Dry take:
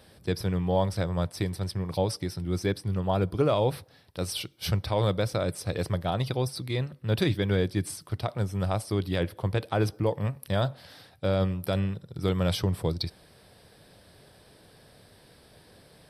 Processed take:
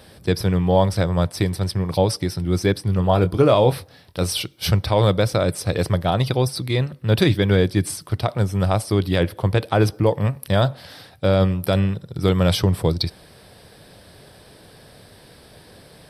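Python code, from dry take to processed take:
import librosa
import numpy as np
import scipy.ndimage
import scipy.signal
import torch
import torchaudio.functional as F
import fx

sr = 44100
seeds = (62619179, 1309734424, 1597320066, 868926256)

y = fx.doubler(x, sr, ms=23.0, db=-10, at=(2.96, 4.37))
y = F.gain(torch.from_numpy(y), 8.5).numpy()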